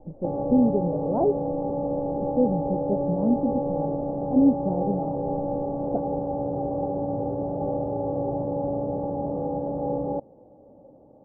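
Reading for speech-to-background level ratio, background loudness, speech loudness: 2.5 dB, −28.5 LKFS, −26.0 LKFS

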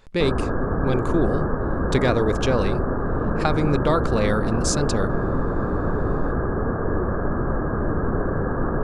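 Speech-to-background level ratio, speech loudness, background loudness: 0.5 dB, −24.5 LKFS, −25.0 LKFS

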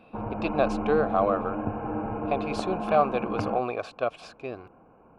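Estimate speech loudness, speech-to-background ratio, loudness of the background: −28.5 LKFS, 3.5 dB, −32.0 LKFS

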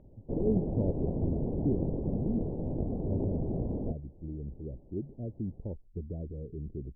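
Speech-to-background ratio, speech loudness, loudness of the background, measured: −3.0 dB, −37.5 LKFS, −34.5 LKFS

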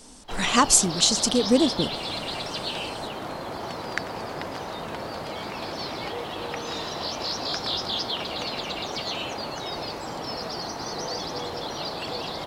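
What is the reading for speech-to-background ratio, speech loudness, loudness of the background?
10.0 dB, −20.5 LKFS, −30.5 LKFS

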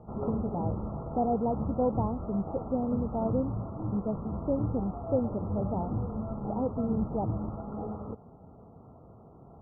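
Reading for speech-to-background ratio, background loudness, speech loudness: 3.0 dB, −36.0 LKFS, −33.0 LKFS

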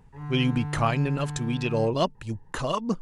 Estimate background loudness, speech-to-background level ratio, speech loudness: −34.5 LKFS, 7.0 dB, −27.5 LKFS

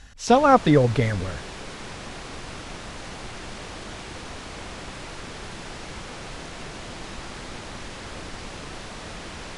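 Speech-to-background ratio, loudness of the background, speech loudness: 18.0 dB, −37.0 LKFS, −19.0 LKFS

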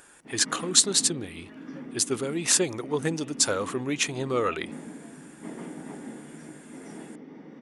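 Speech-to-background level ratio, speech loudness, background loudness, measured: 17.0 dB, −25.0 LKFS, −42.0 LKFS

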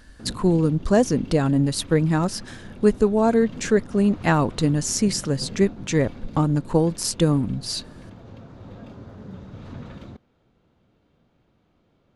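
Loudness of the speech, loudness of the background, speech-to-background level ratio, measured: −21.5 LKFS, −41.0 LKFS, 19.5 dB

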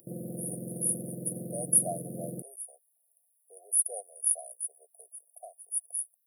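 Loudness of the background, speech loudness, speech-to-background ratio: −40.0 LKFS, −30.0 LKFS, 10.0 dB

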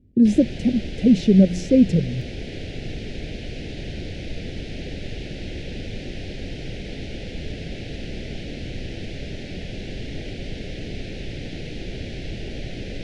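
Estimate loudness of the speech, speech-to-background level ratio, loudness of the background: −18.0 LKFS, 15.5 dB, −33.5 LKFS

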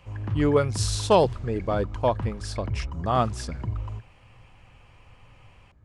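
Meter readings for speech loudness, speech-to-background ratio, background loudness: −26.0 LKFS, 7.5 dB, −33.5 LKFS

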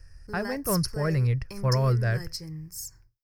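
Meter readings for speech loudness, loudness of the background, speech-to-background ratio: −27.0 LKFS, −37.0 LKFS, 10.0 dB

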